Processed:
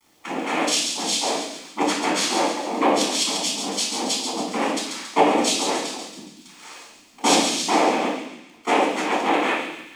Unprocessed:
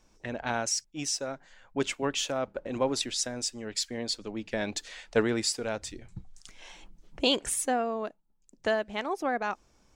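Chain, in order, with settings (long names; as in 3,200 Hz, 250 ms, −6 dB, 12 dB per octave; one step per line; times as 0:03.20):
cochlear-implant simulation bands 4
Butterworth high-pass 210 Hz 48 dB per octave
bit reduction 11 bits
delay with a high-pass on its return 139 ms, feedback 51%, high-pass 2,400 Hz, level −5.5 dB
convolution reverb RT60 0.70 s, pre-delay 11 ms, DRR −3.5 dB
level +2.5 dB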